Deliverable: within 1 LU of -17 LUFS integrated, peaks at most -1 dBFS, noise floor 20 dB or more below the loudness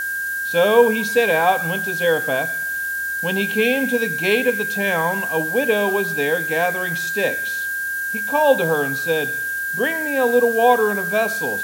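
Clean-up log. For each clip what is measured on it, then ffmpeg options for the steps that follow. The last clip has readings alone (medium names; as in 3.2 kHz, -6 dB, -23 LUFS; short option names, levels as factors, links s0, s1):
steady tone 1.6 kHz; tone level -22 dBFS; noise floor -25 dBFS; noise floor target -39 dBFS; loudness -19.0 LUFS; peak level -2.0 dBFS; loudness target -17.0 LUFS
-> -af "bandreject=f=1600:w=30"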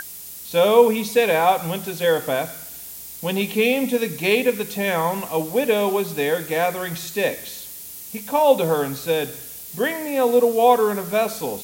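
steady tone not found; noise floor -37 dBFS; noise floor target -41 dBFS
-> -af "afftdn=nr=6:nf=-37"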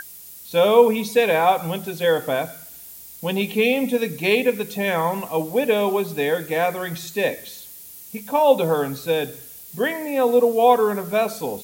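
noise floor -41 dBFS; loudness -20.5 LUFS; peak level -2.5 dBFS; loudness target -17.0 LUFS
-> -af "volume=1.5,alimiter=limit=0.891:level=0:latency=1"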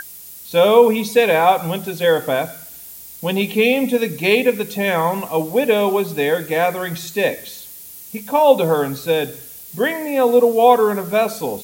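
loudness -17.0 LUFS; peak level -1.0 dBFS; noise floor -38 dBFS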